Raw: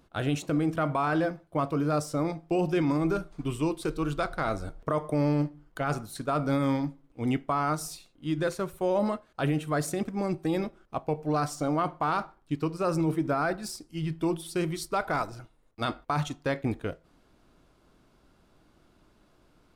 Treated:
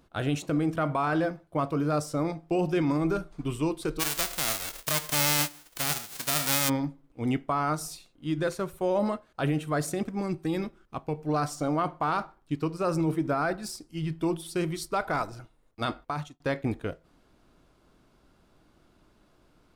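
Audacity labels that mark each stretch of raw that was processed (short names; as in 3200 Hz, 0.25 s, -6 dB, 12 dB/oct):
3.990000	6.680000	spectral whitening exponent 0.1
10.200000	11.290000	bell 640 Hz -7 dB 0.87 oct
15.980000	16.400000	fade out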